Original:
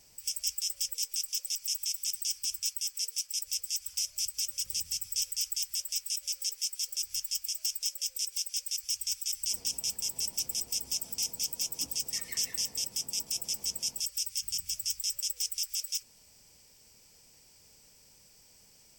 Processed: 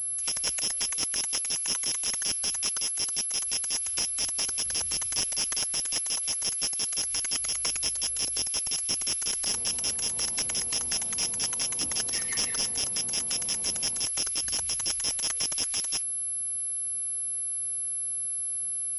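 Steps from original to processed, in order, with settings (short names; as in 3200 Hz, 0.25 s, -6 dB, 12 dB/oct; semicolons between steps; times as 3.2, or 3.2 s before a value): 7.38–8.45 buzz 50 Hz, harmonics 3, -62 dBFS -8 dB/oct; pulse-width modulation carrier 11000 Hz; gain +8 dB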